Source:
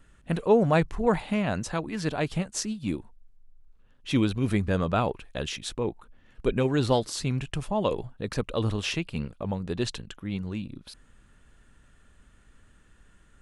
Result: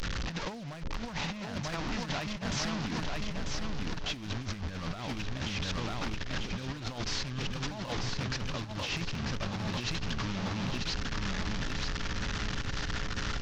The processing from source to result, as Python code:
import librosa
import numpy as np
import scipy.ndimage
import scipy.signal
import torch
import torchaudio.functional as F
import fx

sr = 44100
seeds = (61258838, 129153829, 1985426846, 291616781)

y = fx.delta_mod(x, sr, bps=32000, step_db=-25.5)
y = fx.peak_eq(y, sr, hz=430.0, db=-14.0, octaves=0.66)
y = 10.0 ** (-19.5 / 20.0) * (np.abs((y / 10.0 ** (-19.5 / 20.0) + 3.0) % 4.0 - 2.0) - 1.0)
y = fx.dmg_buzz(y, sr, base_hz=60.0, harmonics=9, level_db=-47.0, tilt_db=0, odd_only=False)
y = fx.echo_feedback(y, sr, ms=943, feedback_pct=47, wet_db=-5)
y = fx.over_compress(y, sr, threshold_db=-30.0, ratio=-0.5)
y = y * librosa.db_to_amplitude(-3.5)